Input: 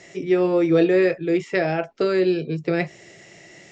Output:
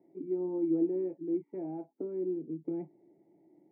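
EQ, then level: vocal tract filter u; dynamic EQ 520 Hz, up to -5 dB, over -42 dBFS, Q 1.9; BPF 170–3400 Hz; -4.0 dB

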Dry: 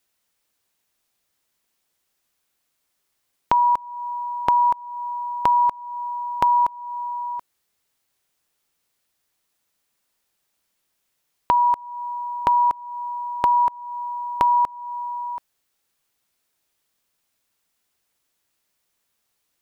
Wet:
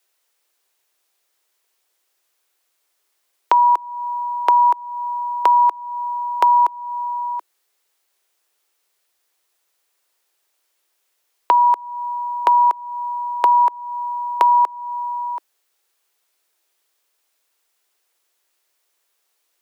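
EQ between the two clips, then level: steep high-pass 330 Hz 48 dB/oct; +4.0 dB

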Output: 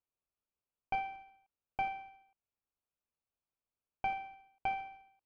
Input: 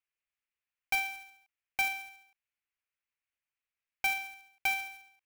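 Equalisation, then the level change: running mean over 23 samples; air absorption 180 m; +5.5 dB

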